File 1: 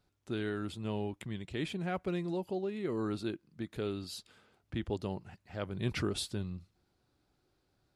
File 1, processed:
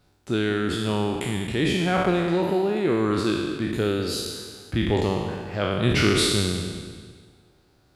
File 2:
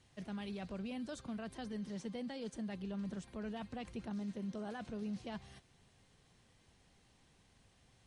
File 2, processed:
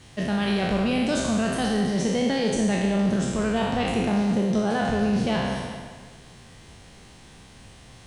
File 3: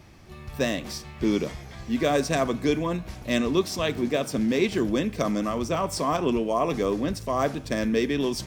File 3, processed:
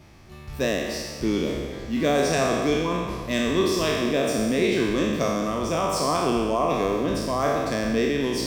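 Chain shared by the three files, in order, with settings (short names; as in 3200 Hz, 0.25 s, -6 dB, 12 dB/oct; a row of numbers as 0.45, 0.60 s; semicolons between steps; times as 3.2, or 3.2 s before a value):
spectral trails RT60 1.50 s; dark delay 0.197 s, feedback 42%, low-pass 3200 Hz, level -12 dB; match loudness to -24 LUFS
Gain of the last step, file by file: +10.5, +17.0, -2.0 dB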